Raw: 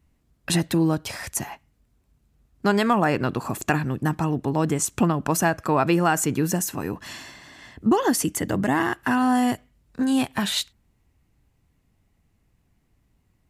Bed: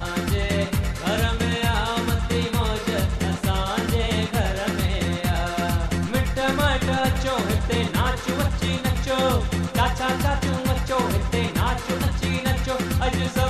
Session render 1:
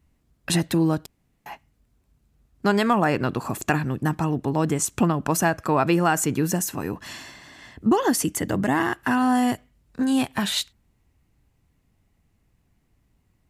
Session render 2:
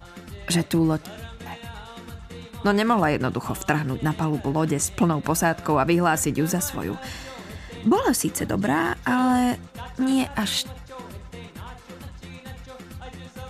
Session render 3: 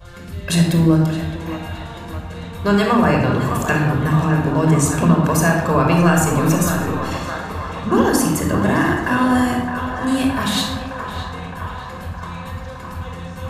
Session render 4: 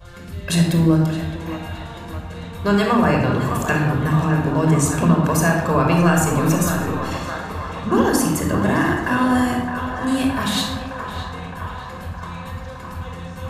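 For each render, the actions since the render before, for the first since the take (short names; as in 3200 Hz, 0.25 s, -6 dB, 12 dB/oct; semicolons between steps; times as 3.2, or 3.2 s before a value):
1.06–1.46 room tone
add bed -16.5 dB
narrowing echo 0.615 s, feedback 80%, band-pass 1100 Hz, level -7 dB; shoebox room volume 3700 m³, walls furnished, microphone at 5.4 m
gain -1.5 dB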